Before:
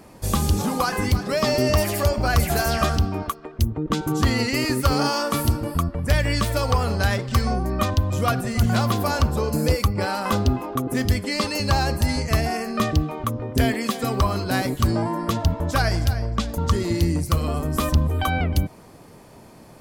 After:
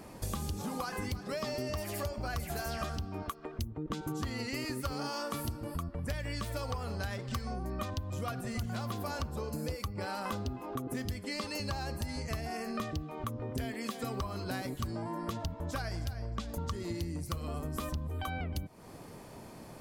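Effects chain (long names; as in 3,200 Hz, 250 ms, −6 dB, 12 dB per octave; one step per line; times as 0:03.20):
downward compressor, threshold −32 dBFS, peak gain reduction 17 dB
level −2.5 dB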